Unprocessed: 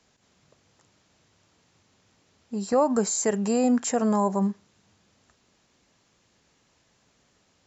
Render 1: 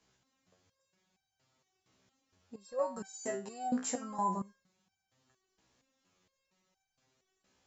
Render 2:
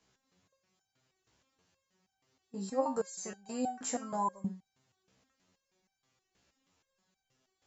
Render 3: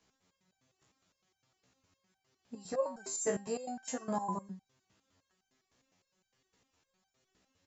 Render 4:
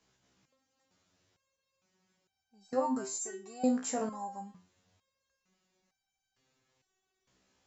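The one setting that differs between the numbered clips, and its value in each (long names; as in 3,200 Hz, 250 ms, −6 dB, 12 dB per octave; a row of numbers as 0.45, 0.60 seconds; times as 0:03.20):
step-sequenced resonator, speed: 4.3, 6.3, 9.8, 2.2 Hertz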